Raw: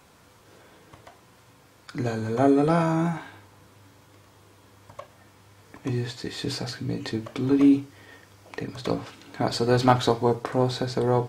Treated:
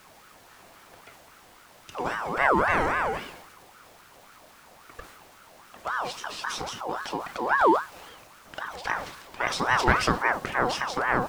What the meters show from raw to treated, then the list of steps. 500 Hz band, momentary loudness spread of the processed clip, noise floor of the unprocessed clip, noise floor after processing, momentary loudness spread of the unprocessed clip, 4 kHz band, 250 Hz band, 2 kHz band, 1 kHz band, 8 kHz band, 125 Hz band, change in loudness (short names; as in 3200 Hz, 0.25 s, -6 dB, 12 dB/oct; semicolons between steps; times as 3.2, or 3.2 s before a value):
-4.5 dB, 16 LU, -56 dBFS, -54 dBFS, 16 LU, -0.5 dB, -10.0 dB, +10.5 dB, +4.0 dB, +1.5 dB, -11.0 dB, -1.5 dB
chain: added noise pink -52 dBFS; transient shaper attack 0 dB, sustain +5 dB; ring modulator with a swept carrier 1000 Hz, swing 40%, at 3.7 Hz